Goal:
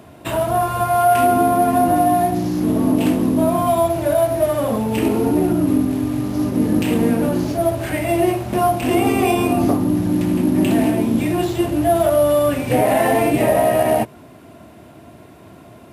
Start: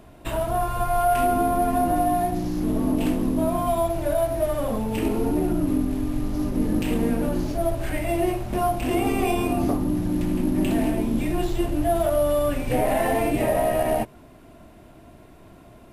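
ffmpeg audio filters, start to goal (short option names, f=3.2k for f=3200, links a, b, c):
-af "highpass=f=81:w=0.5412,highpass=f=81:w=1.3066,volume=6.5dB"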